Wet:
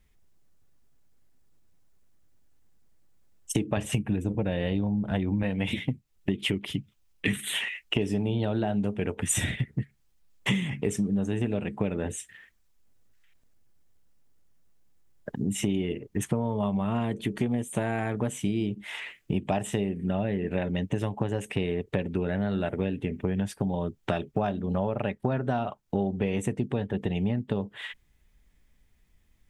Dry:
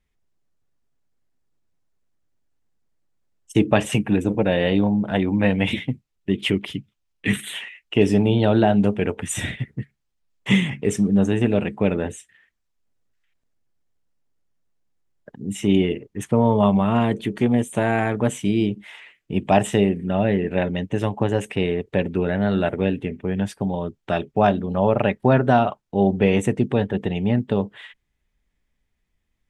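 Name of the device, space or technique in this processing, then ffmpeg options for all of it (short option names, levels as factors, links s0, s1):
ASMR close-microphone chain: -filter_complex "[0:a]asettb=1/sr,asplit=3[s0][s1][s2];[s0]atrim=end=3.774[s3];[s1]atrim=start=3.77:end=5.43,asetpts=PTS-STARTPTS,afade=t=in:d=0.004:c=qsin,afade=t=out:st=1.656:d=0.004:c=qsin,lowshelf=f=120:g=11[s4];[s2]atrim=start=5.426[s5];[s3][s4]acrossfade=d=0.004:c1=hsin:c2=qsin[s6];[s6][s5]acrossfade=d=0.004:c1=qsin:c2=hsin,lowshelf=f=180:g=4.5,acompressor=threshold=0.0282:ratio=6,highshelf=f=8000:g=7,volume=1.88"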